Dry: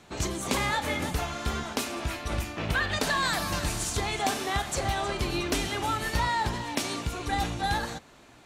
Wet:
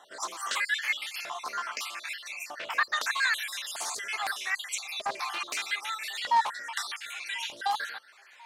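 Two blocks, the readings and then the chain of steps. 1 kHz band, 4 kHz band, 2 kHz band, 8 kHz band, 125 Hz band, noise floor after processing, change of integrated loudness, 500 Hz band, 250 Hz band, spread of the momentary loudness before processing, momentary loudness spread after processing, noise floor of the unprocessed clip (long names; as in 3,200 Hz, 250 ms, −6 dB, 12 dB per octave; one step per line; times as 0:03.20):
−1.5 dB, −1.5 dB, +1.5 dB, −3.0 dB, below −35 dB, −55 dBFS, −2.0 dB, −14.0 dB, −26.0 dB, 6 LU, 10 LU, −54 dBFS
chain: time-frequency cells dropped at random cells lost 49%
auto-filter high-pass saw up 0.8 Hz 770–3,000 Hz
delay with a band-pass on its return 1,041 ms, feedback 52%, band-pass 510 Hz, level −21 dB
highs frequency-modulated by the lows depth 0.24 ms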